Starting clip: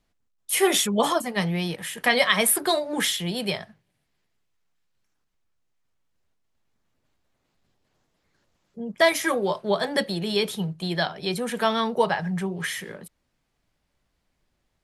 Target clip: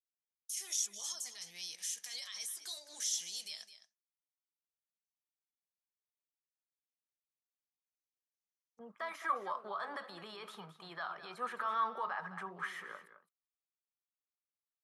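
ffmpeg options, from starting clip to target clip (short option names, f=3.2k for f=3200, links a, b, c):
-af "agate=range=-33dB:threshold=-35dB:ratio=3:detection=peak,aemphasis=mode=production:type=cd,acompressor=threshold=-21dB:ratio=6,alimiter=limit=-22.5dB:level=0:latency=1:release=74,asetnsamples=n=441:p=0,asendcmd='8.79 bandpass f 1200',bandpass=f=6k:t=q:w=6.6:csg=0,aecho=1:1:213:0.224,volume=8dB"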